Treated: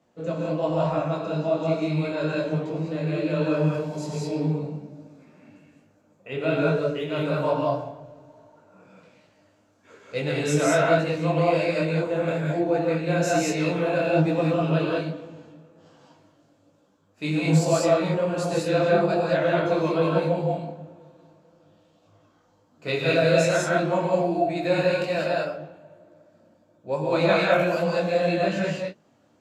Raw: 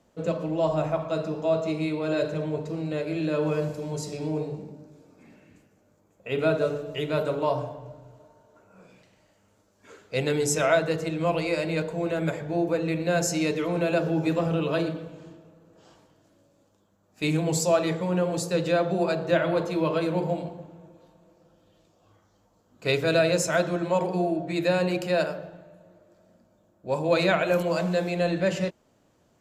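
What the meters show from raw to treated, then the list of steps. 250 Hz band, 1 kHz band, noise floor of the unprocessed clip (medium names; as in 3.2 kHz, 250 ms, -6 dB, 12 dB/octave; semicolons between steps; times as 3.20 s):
+2.0 dB, +3.5 dB, -65 dBFS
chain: high-pass 100 Hz; treble shelf 7.6 kHz -11 dB; gated-style reverb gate 230 ms rising, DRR -2.5 dB; detune thickener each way 41 cents; trim +2 dB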